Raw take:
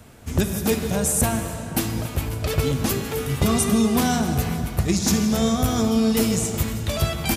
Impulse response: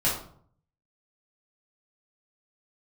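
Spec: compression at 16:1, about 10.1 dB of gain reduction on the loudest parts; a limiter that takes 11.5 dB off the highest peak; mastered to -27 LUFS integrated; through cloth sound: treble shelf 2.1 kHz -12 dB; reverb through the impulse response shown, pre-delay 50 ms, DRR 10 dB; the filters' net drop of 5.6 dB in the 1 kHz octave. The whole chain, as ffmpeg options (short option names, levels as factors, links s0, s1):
-filter_complex "[0:a]equalizer=f=1000:t=o:g=-5.5,acompressor=threshold=0.0562:ratio=16,alimiter=limit=0.0708:level=0:latency=1,asplit=2[s0][s1];[1:a]atrim=start_sample=2205,adelay=50[s2];[s1][s2]afir=irnorm=-1:irlink=0,volume=0.0891[s3];[s0][s3]amix=inputs=2:normalize=0,highshelf=f=2100:g=-12,volume=2"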